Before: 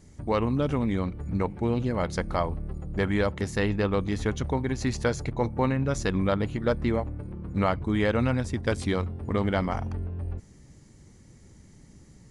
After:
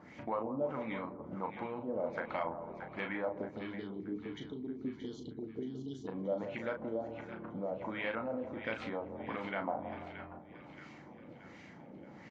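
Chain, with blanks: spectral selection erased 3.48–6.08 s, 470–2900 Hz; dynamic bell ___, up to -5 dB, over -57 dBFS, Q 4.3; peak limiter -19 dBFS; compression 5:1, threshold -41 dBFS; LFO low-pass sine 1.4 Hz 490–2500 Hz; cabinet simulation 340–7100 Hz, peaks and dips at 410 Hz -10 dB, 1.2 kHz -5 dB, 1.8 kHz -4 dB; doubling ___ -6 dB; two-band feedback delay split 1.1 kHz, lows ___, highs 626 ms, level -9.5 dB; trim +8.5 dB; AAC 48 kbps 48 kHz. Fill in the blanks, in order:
5 kHz, 36 ms, 167 ms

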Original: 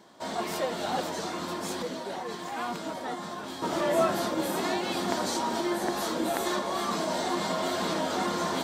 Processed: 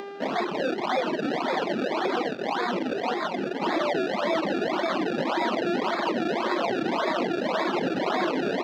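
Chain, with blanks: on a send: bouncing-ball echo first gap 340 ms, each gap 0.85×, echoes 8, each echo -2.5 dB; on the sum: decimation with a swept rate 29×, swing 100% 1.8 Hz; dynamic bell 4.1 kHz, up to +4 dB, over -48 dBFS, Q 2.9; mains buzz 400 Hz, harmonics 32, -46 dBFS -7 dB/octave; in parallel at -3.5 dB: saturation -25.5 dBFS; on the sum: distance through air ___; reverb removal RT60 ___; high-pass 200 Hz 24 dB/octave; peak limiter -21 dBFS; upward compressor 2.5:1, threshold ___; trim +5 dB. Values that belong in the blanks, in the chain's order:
220 m, 1.9 s, -40 dBFS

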